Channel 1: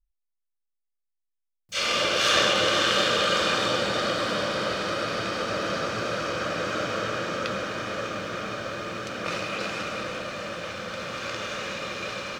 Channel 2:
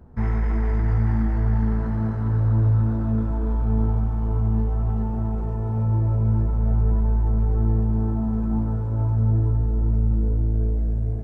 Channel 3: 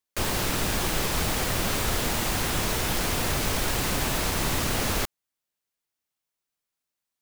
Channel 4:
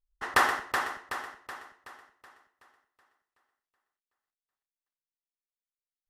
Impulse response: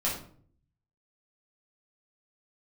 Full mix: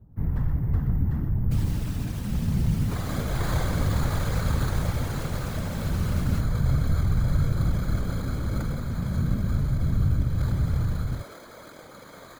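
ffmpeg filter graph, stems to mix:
-filter_complex "[0:a]acrusher=samples=16:mix=1:aa=0.000001,adelay=1150,volume=-5.5dB[a];[1:a]aemphasis=mode=reproduction:type=bsi,acrusher=samples=3:mix=1:aa=0.000001,volume=-9.5dB[b];[2:a]alimiter=limit=-18.5dB:level=0:latency=1:release=35,adelay=1350,volume=-8.5dB[c];[3:a]equalizer=f=500:w=0.49:g=13,aeval=exprs='val(0)*pow(10,-19*if(lt(mod(-0.76*n/s,1),2*abs(-0.76)/1000),1-mod(-0.76*n/s,1)/(2*abs(-0.76)/1000),(mod(-0.76*n/s,1)-2*abs(-0.76)/1000)/(1-2*abs(-0.76)/1000))/20)':c=same,volume=-14.5dB[d];[a][b][c][d]amix=inputs=4:normalize=0,afftfilt=real='hypot(re,im)*cos(2*PI*random(0))':imag='hypot(re,im)*sin(2*PI*random(1))':win_size=512:overlap=0.75"

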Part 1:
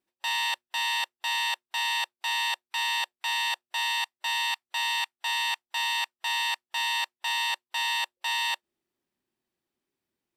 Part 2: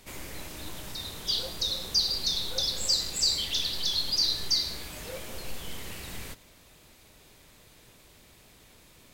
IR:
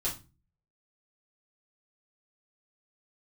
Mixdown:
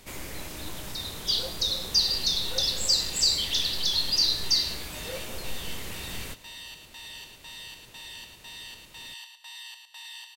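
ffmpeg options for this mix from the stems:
-filter_complex "[0:a]acrossover=split=190|3000[a][b][c];[b]acompressor=threshold=-46dB:ratio=3[d];[a][d][c]amix=inputs=3:normalize=0,flanger=delay=0.2:depth=9.2:regen=-48:speed=1:shape=triangular,adelay=1700,volume=-6.5dB,asplit=2[e][f];[f]volume=-6.5dB[g];[1:a]volume=2.5dB[h];[g]aecho=0:1:109|218|327|436|545:1|0.36|0.13|0.0467|0.0168[i];[e][h][i]amix=inputs=3:normalize=0"

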